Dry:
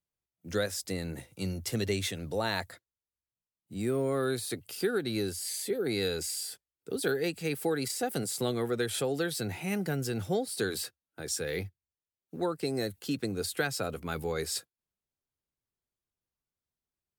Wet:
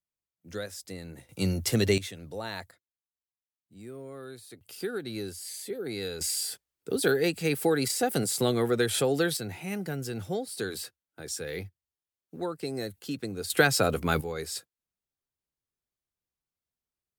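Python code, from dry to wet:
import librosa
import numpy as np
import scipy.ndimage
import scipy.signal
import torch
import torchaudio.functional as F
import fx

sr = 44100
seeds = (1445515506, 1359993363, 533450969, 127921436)

y = fx.gain(x, sr, db=fx.steps((0.0, -6.0), (1.29, 6.5), (1.98, -5.5), (2.71, -13.0), (4.61, -4.0), (6.21, 5.0), (9.37, -2.0), (13.5, 9.0), (14.21, -2.0)))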